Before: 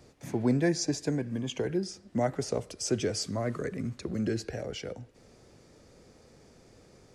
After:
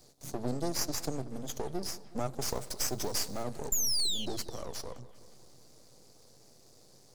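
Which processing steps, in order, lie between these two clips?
0:02.45–0:03.43: mu-law and A-law mismatch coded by mu
0:03.72–0:04.26: sound drawn into the spectrogram fall 2,900–7,300 Hz −24 dBFS
elliptic band-stop filter 780–3,900 Hz
spectral tilt +2.5 dB per octave
downward compressor 6 to 1, threshold −28 dBFS, peak gain reduction 10 dB
half-wave rectification
parametric band 130 Hz +7.5 dB 0.22 octaves
on a send: bucket-brigade delay 186 ms, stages 4,096, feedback 64%, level −17 dB
on the sum: level +3 dB

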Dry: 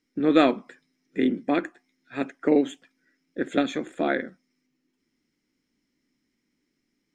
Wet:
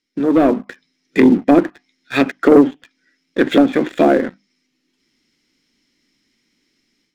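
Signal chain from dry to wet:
mains-hum notches 50/100/150/200/250/300 Hz
treble cut that deepens with the level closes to 750 Hz, closed at −21 dBFS
parametric band 3,900 Hz +10 dB 1.8 octaves
leveller curve on the samples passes 2
automatic gain control gain up to 11.5 dB

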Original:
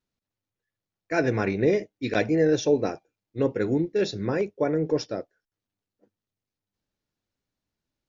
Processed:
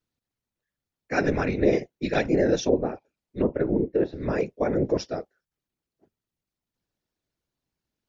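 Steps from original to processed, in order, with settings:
random phases in short frames
0:02.60–0:04.21: treble cut that deepens with the level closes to 1,200 Hz, closed at −20 dBFS

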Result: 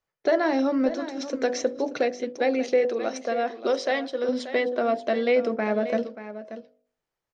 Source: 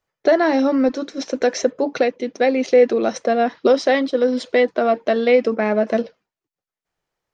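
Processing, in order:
hum removal 49.36 Hz, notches 16
0:02.85–0:04.29: low-shelf EQ 310 Hz −10.5 dB
single-tap delay 583 ms −12.5 dB
level −6 dB

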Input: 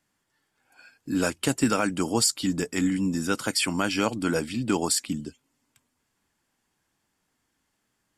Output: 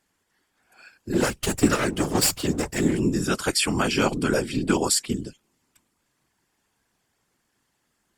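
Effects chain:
0:01.13–0:03.00: lower of the sound and its delayed copy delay 3.8 ms
random phases in short frames
level +3 dB
Opus 64 kbit/s 48,000 Hz

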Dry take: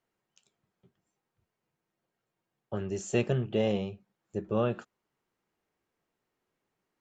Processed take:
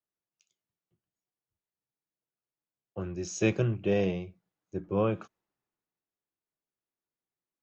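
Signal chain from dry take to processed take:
wrong playback speed 48 kHz file played as 44.1 kHz
multiband upward and downward expander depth 40%

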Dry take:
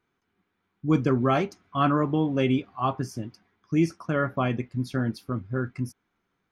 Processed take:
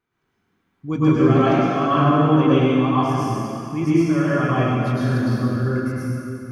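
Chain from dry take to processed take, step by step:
0:01.35–0:02.80: Bessel low-pass filter 7,500 Hz, order 2
dense smooth reverb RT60 2.7 s, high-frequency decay 0.85×, pre-delay 90 ms, DRR −10 dB
level −3.5 dB

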